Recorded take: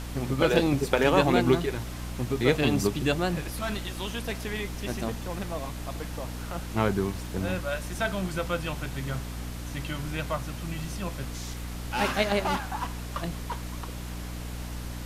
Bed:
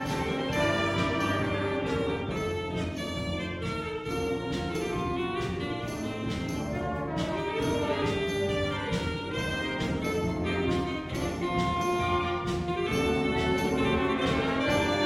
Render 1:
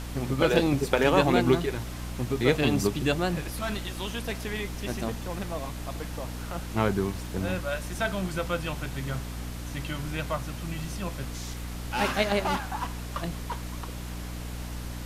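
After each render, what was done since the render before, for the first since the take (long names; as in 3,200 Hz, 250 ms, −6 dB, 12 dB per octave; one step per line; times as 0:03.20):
no processing that can be heard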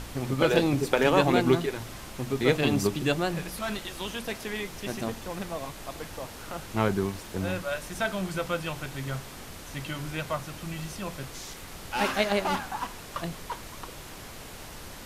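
hum removal 60 Hz, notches 5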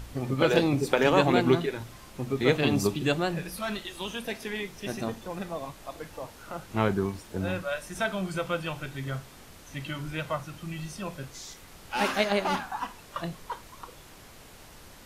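noise reduction from a noise print 7 dB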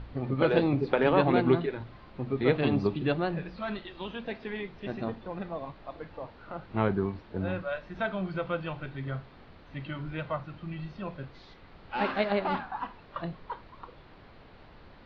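elliptic low-pass filter 4,400 Hz, stop band 60 dB
high-shelf EQ 2,600 Hz −11.5 dB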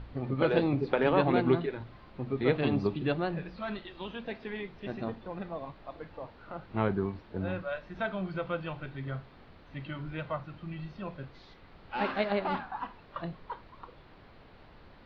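level −2 dB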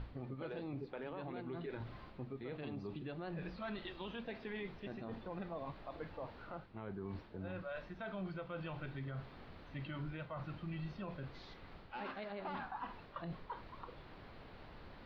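reversed playback
downward compressor 10 to 1, threshold −38 dBFS, peak gain reduction 18.5 dB
reversed playback
brickwall limiter −35.5 dBFS, peak gain reduction 7.5 dB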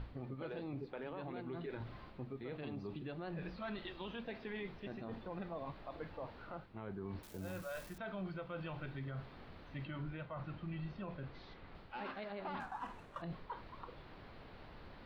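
0:07.23–0:07.98: spike at every zero crossing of −44 dBFS
0:09.85–0:11.75: high-frequency loss of the air 110 metres
0:12.60–0:13.22: running median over 9 samples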